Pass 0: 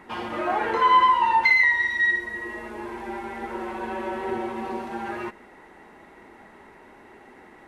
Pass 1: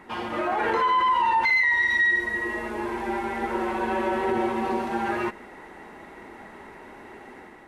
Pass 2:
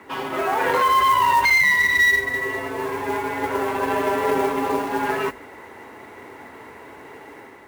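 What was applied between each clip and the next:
limiter -20.5 dBFS, peak gain reduction 12 dB; AGC gain up to 5 dB
modulation noise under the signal 22 dB; added harmonics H 2 -19 dB, 3 -21 dB, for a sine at -14 dBFS; frequency shift +44 Hz; gain +5.5 dB

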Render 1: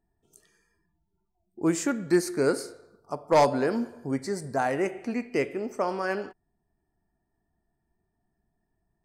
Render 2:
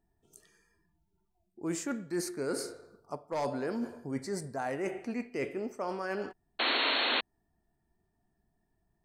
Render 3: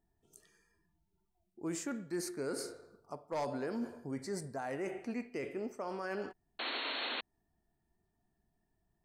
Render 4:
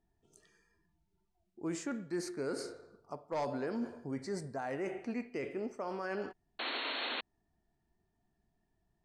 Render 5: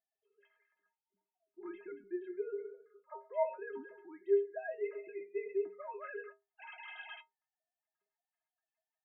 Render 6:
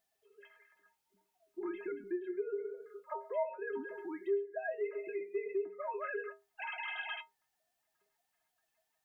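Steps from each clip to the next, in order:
reverse; compressor 5:1, threshold -32 dBFS, peak gain reduction 14.5 dB; reverse; painted sound noise, 6.59–7.21, 230–4400 Hz -29 dBFS
limiter -26.5 dBFS, peak gain reduction 9 dB; gain -3 dB
Bessel low-pass 6100 Hz, order 2; gain +1 dB
sine-wave speech; metallic resonator 190 Hz, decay 0.3 s, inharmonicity 0.03; gain +10.5 dB
compressor 2.5:1, threshold -51 dBFS, peak gain reduction 17.5 dB; gain +12 dB

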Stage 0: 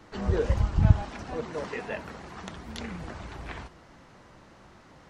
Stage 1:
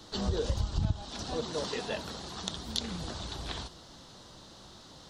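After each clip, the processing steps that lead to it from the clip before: resonant high shelf 2900 Hz +8.5 dB, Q 3; compressor 4:1, threshold -27 dBFS, peak gain reduction 14 dB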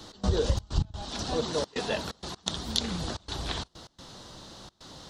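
step gate "x.xxx.x.xxxxx" 128 bpm -24 dB; gain +5 dB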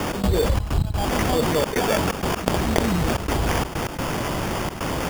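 sample-and-hold 11×; fast leveller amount 70%; gain +3.5 dB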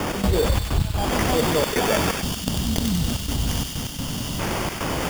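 thin delay 95 ms, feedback 73%, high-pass 2100 Hz, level -3 dB; spectral gain 2.22–4.4, 290–2700 Hz -11 dB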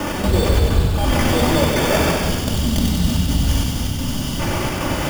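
reverb RT60 1.9 s, pre-delay 3 ms, DRR -1 dB

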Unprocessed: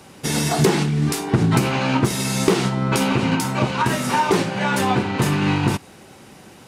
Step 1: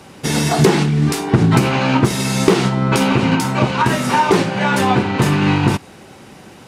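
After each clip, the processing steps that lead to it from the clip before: high shelf 6900 Hz -6 dB; gain +4.5 dB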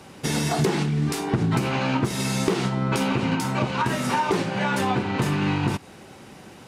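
compressor 2:1, threshold -18 dBFS, peak gain reduction 6.5 dB; gain -4.5 dB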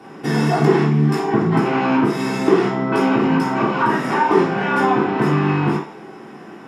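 reverb RT60 0.50 s, pre-delay 3 ms, DRR -6.5 dB; gain -10 dB

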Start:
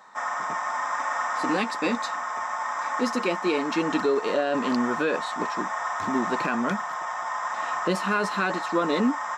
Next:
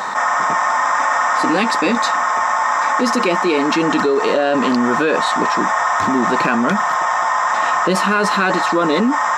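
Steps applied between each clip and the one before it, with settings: fast leveller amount 70%; gain +5.5 dB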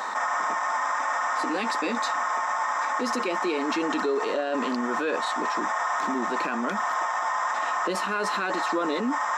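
limiter -10 dBFS, peak gain reduction 5.5 dB; HPF 230 Hz 24 dB/oct; gain -8 dB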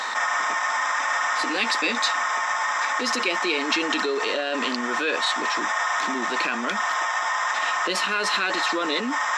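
weighting filter D

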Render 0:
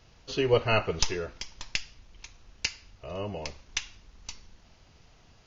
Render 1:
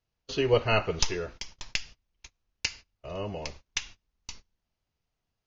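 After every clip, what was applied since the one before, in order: gate -44 dBFS, range -26 dB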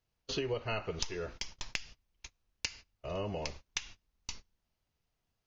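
compressor 8:1, threshold -32 dBFS, peak gain reduction 15 dB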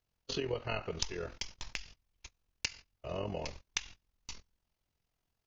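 AM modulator 43 Hz, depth 50%; gain +2 dB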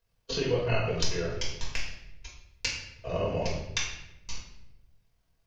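reverb RT60 0.90 s, pre-delay 4 ms, DRR -5 dB

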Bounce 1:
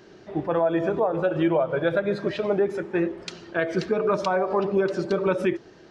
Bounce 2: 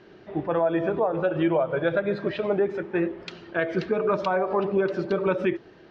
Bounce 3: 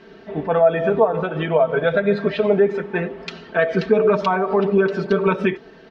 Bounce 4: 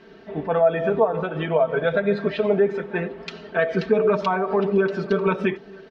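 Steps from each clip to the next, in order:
Chebyshev low-pass 3100 Hz, order 2
comb 4.5 ms, depth 82%; gain +4.5 dB
echo 0.944 s -23.5 dB; gain -3 dB

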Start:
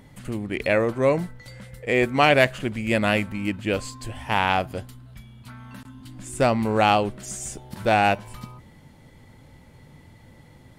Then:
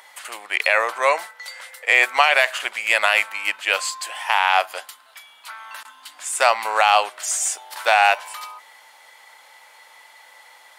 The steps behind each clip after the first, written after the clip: HPF 790 Hz 24 dB/oct; maximiser +13.5 dB; gain -2 dB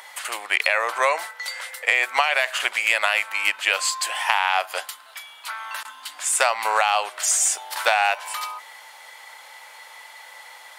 low shelf 230 Hz -10 dB; compressor 6:1, threshold -21 dBFS, peak gain reduction 10.5 dB; gain +5 dB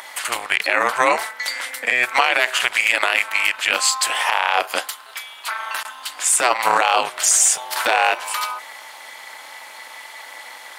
limiter -10 dBFS, peak gain reduction 8 dB; AM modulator 250 Hz, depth 60%; gain +9 dB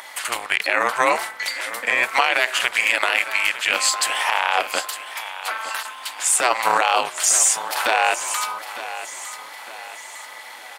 feedback echo 0.906 s, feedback 44%, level -13 dB; gain -1.5 dB

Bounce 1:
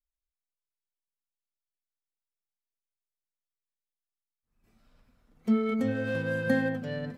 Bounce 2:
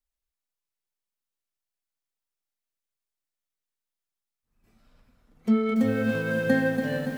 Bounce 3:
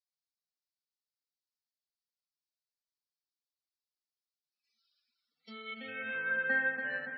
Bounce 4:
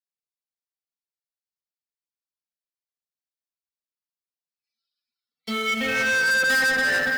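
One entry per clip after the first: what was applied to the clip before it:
lo-fi delay 0.285 s, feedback 55%, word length 8-bit, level -7 dB; gain +3 dB
band-pass sweep 4600 Hz -> 1700 Hz, 5.36–6.31; loudest bins only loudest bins 64; gain +1.5 dB
sample leveller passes 5; gain +3 dB

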